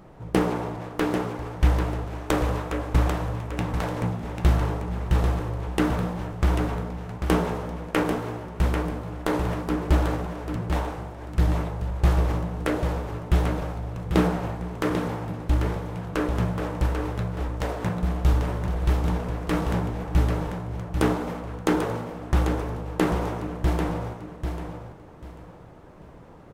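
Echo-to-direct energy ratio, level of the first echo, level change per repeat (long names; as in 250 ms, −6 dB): −6.5 dB, −7.0 dB, −12.0 dB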